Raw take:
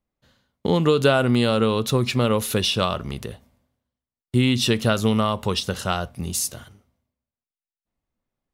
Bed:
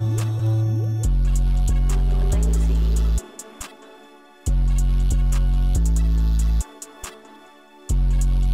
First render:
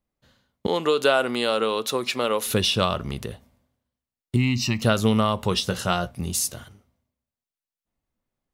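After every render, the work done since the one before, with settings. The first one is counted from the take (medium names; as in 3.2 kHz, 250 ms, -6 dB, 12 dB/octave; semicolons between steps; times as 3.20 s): 0.67–2.46 s: high-pass 410 Hz; 4.36–4.82 s: static phaser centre 2.3 kHz, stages 8; 5.50–6.11 s: doubling 17 ms -8 dB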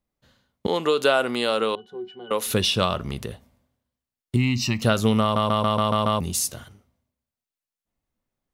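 1.75–2.31 s: pitch-class resonator F#, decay 0.15 s; 5.22 s: stutter in place 0.14 s, 7 plays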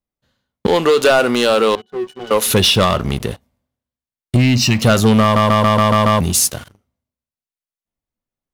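waveshaping leveller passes 3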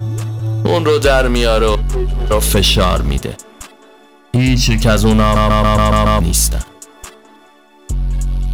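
add bed +1.5 dB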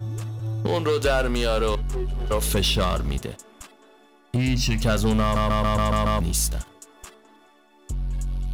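trim -10 dB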